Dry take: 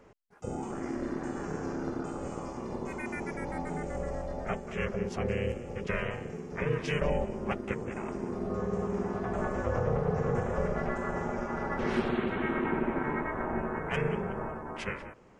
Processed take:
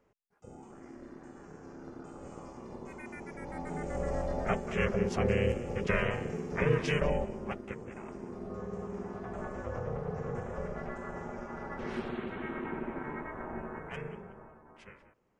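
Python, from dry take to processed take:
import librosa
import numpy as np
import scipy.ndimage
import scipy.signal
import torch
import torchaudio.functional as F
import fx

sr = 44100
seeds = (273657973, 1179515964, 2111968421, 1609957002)

y = fx.gain(x, sr, db=fx.line((1.61, -14.0), (2.38, -8.0), (3.29, -8.0), (4.19, 3.0), (6.74, 3.0), (7.72, -7.5), (13.78, -7.5), (14.49, -17.0)))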